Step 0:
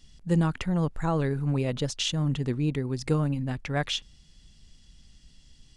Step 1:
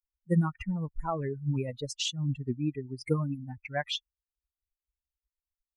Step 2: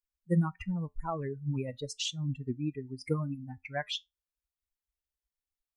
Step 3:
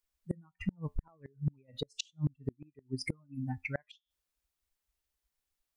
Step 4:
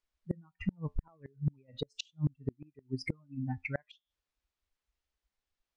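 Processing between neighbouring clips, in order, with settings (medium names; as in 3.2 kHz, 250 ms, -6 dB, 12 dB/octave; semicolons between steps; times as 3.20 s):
expander on every frequency bin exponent 3; trim +1.5 dB
feedback comb 87 Hz, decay 0.17 s, harmonics all, mix 40%
inverted gate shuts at -27 dBFS, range -36 dB; trim +6.5 dB
distance through air 100 m; trim +1 dB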